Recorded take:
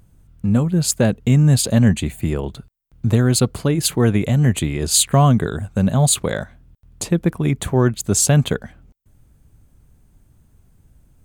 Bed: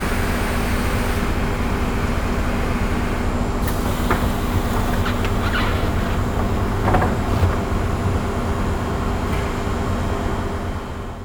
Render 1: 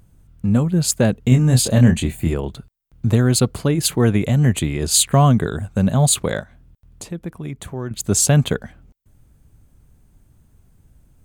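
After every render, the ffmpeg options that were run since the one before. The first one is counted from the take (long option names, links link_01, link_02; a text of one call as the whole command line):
ffmpeg -i in.wav -filter_complex "[0:a]asettb=1/sr,asplit=3[link_01][link_02][link_03];[link_01]atrim=end=1.294[link_04];[link_02]atrim=start=1.29:end=2.34,asetpts=PTS-STARTPTS,afade=type=in:duration=0.004:curve=qsin,afade=type=out:start_time=1.046:duration=0.004:curve=qsin,asplit=2[link_05][link_06];[link_06]adelay=24,volume=-5.5dB[link_07];[link_05][link_07]amix=inputs=2:normalize=0,atrim=end_sample=46305[link_08];[link_03]atrim=start=2.336[link_09];[link_04][link_08]acrossfade=duration=0.004:curve1=hsin:curve2=qsin[link_10];[link_10][link_09]acrossfade=duration=0.004:curve1=qsin:curve2=hsin,asettb=1/sr,asplit=3[link_11][link_12][link_13];[link_11]atrim=end=6.404[link_14];[link_12]atrim=start=6.4:end=7.91,asetpts=PTS-STARTPTS,afade=type=in:duration=0.004:curve=qsin,afade=type=out:start_time=1.506:duration=0.004:curve=qsin,acompressor=threshold=-45dB:ratio=1.5:attack=3.2:release=140:knee=1:detection=peak[link_15];[link_13]atrim=start=7.906[link_16];[link_14][link_15]acrossfade=duration=0.004:curve1=hsin:curve2=qsin[link_17];[link_17][link_16]acrossfade=duration=0.004:curve1=qsin:curve2=hsin" out.wav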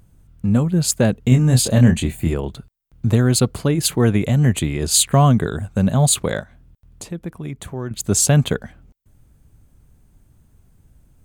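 ffmpeg -i in.wav -af anull out.wav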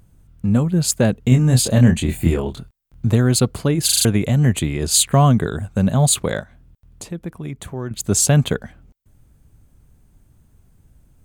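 ffmpeg -i in.wav -filter_complex "[0:a]asettb=1/sr,asplit=3[link_01][link_02][link_03];[link_01]atrim=end=2.064[link_04];[link_02]atrim=start=2.06:end=3.07,asetpts=PTS-STARTPTS,afade=type=in:duration=0.004:curve=qsin,afade=type=out:start_time=1.006:duration=0.004:curve=qsin,asplit=2[link_05][link_06];[link_06]adelay=24,volume=-2.5dB[link_07];[link_05][link_07]amix=inputs=2:normalize=0,atrim=end_sample=44541[link_08];[link_03]atrim=start=3.066[link_09];[link_04][link_08]acrossfade=duration=0.004:curve1=hsin:curve2=qsin[link_10];[link_10][link_09]acrossfade=duration=0.004:curve1=qsin:curve2=hsin,asplit=6[link_11][link_12][link_13][link_14][link_15][link_16];[link_11]atrim=end=3.892[link_17];[link_12]atrim=start=3.848:end=3.892[link_18];[link_13]atrim=start=3.848:end=3.892[link_19];[link_14]atrim=start=3.848:end=3.892[link_20];[link_15]atrim=start=3.848:end=3.892[link_21];[link_16]atrim=start=4.048[link_22];[link_17][link_18]acrossfade=duration=0.004:curve1=hsin:curve2=hsin[link_23];[link_23][link_19]acrossfade=duration=0.004:curve1=hsin:curve2=hsin[link_24];[link_24][link_20]acrossfade=duration=0.004:curve1=hsin:curve2=hsin[link_25];[link_25][link_21]acrossfade=duration=0.004:curve1=hsin:curve2=hsin[link_26];[link_26][link_22]acrossfade=duration=0.004:curve1=hsin:curve2=hsin" out.wav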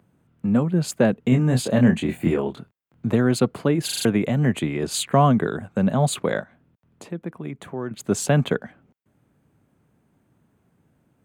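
ffmpeg -i in.wav -filter_complex "[0:a]highpass=98,acrossover=split=150 2900:gain=0.2 1 0.224[link_01][link_02][link_03];[link_01][link_02][link_03]amix=inputs=3:normalize=0" out.wav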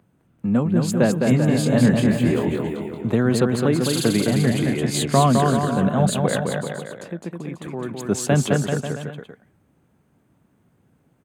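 ffmpeg -i in.wav -af "aecho=1:1:210|388.5|540.2|669.2|778.8:0.631|0.398|0.251|0.158|0.1" out.wav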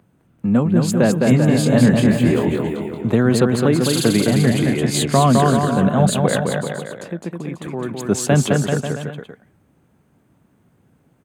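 ffmpeg -i in.wav -af "volume=3.5dB,alimiter=limit=-3dB:level=0:latency=1" out.wav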